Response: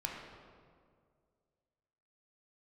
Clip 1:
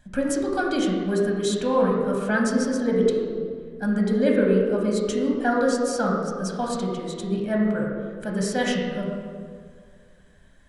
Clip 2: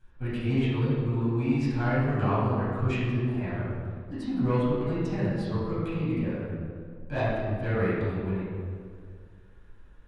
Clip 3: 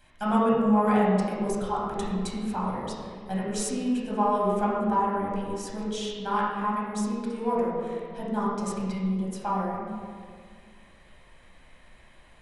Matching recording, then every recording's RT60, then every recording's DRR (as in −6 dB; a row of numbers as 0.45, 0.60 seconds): 1; 2.1, 2.1, 2.1 seconds; −1.5, −13.5, −7.0 decibels